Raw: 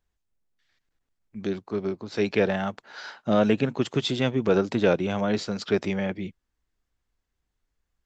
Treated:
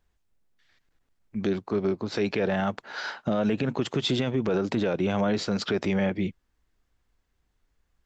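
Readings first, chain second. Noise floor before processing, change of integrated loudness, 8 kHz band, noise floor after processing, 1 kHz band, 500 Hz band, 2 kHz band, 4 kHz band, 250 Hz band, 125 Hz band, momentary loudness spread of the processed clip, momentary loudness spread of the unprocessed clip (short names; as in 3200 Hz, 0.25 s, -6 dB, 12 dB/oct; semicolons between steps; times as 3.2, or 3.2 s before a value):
-81 dBFS, -1.5 dB, n/a, -74 dBFS, -1.0 dB, -2.5 dB, -1.0 dB, +0.5 dB, -0.5 dB, 0.0 dB, 6 LU, 13 LU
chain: high shelf 4700 Hz -5 dB; in parallel at -3 dB: compressor, threshold -31 dBFS, peak gain reduction 14.5 dB; on the sum: limiter -18.5 dBFS, peak gain reduction 10.5 dB; gain +2 dB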